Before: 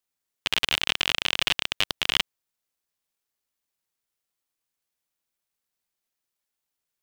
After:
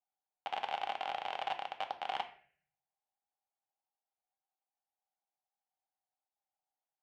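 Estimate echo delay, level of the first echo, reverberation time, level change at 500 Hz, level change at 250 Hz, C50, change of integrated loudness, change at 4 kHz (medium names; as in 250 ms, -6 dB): no echo, no echo, 0.50 s, -4.5 dB, -18.5 dB, 11.5 dB, -14.5 dB, -21.5 dB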